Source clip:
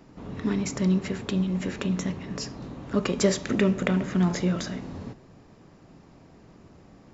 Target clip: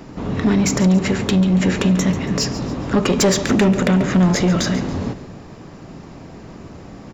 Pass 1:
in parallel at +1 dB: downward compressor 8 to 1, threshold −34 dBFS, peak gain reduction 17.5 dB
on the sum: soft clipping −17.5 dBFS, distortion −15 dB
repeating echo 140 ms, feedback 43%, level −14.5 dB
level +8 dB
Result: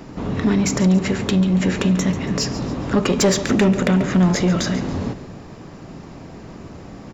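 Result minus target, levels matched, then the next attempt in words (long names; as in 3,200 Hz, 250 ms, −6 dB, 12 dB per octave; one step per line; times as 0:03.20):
downward compressor: peak gain reduction +7.5 dB
in parallel at +1 dB: downward compressor 8 to 1, threshold −25.5 dBFS, peak gain reduction 10 dB
on the sum: soft clipping −17.5 dBFS, distortion −13 dB
repeating echo 140 ms, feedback 43%, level −14.5 dB
level +8 dB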